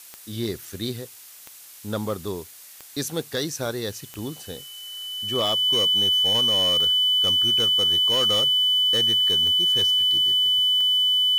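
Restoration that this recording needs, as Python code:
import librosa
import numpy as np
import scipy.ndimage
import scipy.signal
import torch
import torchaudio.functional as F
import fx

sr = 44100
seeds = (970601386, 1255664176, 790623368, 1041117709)

y = fx.fix_declip(x, sr, threshold_db=-17.0)
y = fx.fix_declick_ar(y, sr, threshold=10.0)
y = fx.notch(y, sr, hz=3000.0, q=30.0)
y = fx.noise_reduce(y, sr, print_start_s=1.07, print_end_s=1.57, reduce_db=25.0)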